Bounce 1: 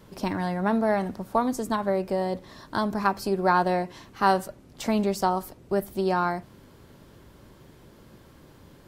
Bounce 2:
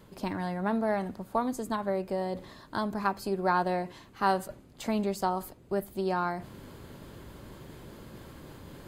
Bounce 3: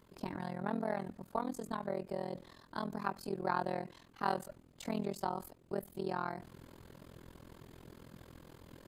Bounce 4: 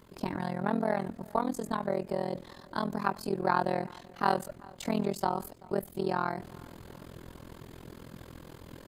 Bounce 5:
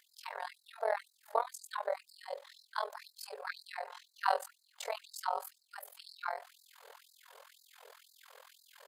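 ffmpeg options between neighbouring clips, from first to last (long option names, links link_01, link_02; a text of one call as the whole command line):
ffmpeg -i in.wav -af "bandreject=frequency=5600:width=7.9,areverse,acompressor=mode=upward:threshold=-31dB:ratio=2.5,areverse,volume=-5dB" out.wav
ffmpeg -i in.wav -af "tremolo=f=42:d=0.974,volume=-4dB" out.wav
ffmpeg -i in.wav -filter_complex "[0:a]asplit=2[link_01][link_02];[link_02]adelay=383,lowpass=frequency=4700:poles=1,volume=-23.5dB,asplit=2[link_03][link_04];[link_04]adelay=383,lowpass=frequency=4700:poles=1,volume=0.5,asplit=2[link_05][link_06];[link_06]adelay=383,lowpass=frequency=4700:poles=1,volume=0.5[link_07];[link_01][link_03][link_05][link_07]amix=inputs=4:normalize=0,volume=7dB" out.wav
ffmpeg -i in.wav -af "afftfilt=real='re*gte(b*sr/1024,390*pow(3900/390,0.5+0.5*sin(2*PI*2*pts/sr)))':imag='im*gte(b*sr/1024,390*pow(3900/390,0.5+0.5*sin(2*PI*2*pts/sr)))':win_size=1024:overlap=0.75,volume=-1.5dB" out.wav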